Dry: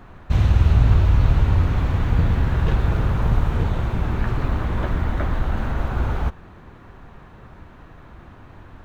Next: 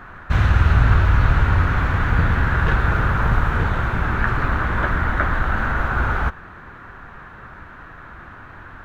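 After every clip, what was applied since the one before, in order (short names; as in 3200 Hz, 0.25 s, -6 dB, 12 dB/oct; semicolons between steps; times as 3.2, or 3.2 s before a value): bell 1500 Hz +14.5 dB 1.1 oct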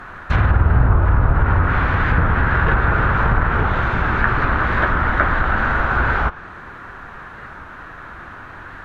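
treble ducked by the level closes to 1000 Hz, closed at -10 dBFS; tone controls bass -4 dB, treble +3 dB; record warp 45 rpm, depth 100 cents; gain +4.5 dB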